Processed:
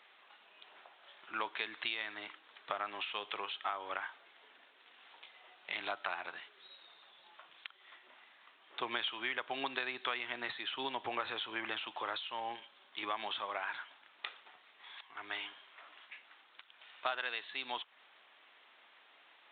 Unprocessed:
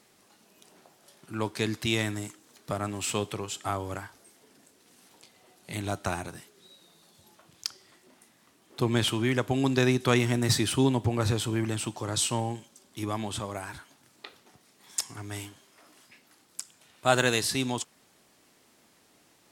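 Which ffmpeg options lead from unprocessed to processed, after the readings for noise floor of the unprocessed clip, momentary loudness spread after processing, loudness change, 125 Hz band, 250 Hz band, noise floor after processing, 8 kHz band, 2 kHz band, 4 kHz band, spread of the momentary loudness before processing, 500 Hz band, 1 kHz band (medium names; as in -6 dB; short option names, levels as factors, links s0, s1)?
-63 dBFS, 21 LU, -11.0 dB, -37.0 dB, -22.5 dB, -64 dBFS, under -40 dB, -4.5 dB, -7.0 dB, 17 LU, -15.0 dB, -5.5 dB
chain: -af "highpass=970,acompressor=threshold=0.0126:ratio=12,aresample=8000,aresample=44100,volume=1.88"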